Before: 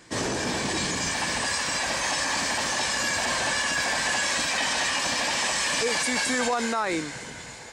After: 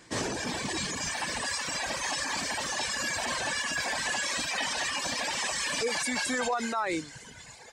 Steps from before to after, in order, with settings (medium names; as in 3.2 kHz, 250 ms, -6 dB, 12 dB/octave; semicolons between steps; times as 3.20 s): reverb removal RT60 1.5 s; trim -2.5 dB